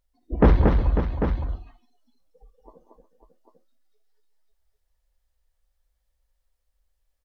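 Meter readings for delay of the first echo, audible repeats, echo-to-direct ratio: 55 ms, 6, -1.0 dB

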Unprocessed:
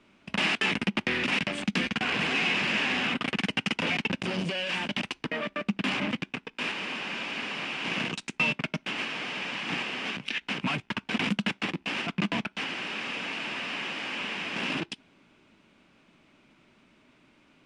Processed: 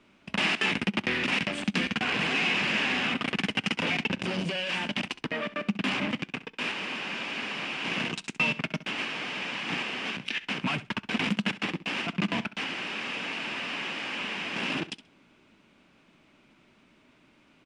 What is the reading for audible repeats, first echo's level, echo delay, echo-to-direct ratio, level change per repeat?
2, -16.0 dB, 66 ms, -16.0 dB, -16.0 dB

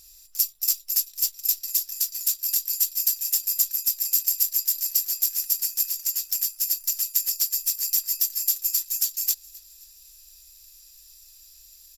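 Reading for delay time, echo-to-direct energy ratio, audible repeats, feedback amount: 263 ms, -22.0 dB, 2, 45%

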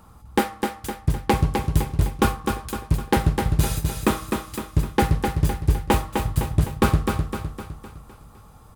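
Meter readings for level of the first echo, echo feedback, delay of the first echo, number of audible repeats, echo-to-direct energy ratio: -5.0 dB, 50%, 255 ms, 5, -4.0 dB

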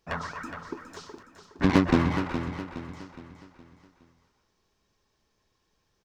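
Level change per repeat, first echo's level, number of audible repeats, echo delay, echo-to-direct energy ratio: -7.5 dB, -9.5 dB, 4, 416 ms, -8.5 dB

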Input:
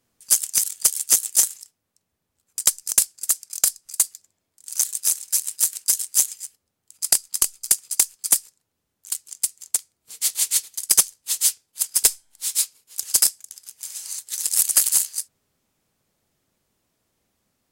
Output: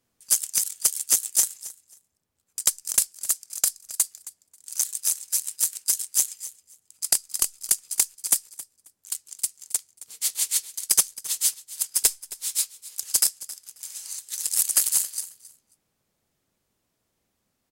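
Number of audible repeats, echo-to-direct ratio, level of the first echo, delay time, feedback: 2, -17.5 dB, -17.5 dB, 269 ms, 18%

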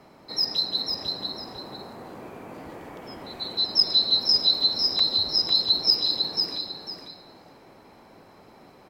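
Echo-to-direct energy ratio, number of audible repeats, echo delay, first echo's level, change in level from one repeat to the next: -4.5 dB, 2, 499 ms, -5.0 dB, -11.5 dB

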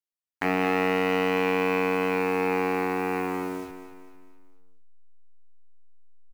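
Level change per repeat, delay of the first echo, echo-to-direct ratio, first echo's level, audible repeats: -6.5 dB, 225 ms, -9.5 dB, -10.5 dB, 4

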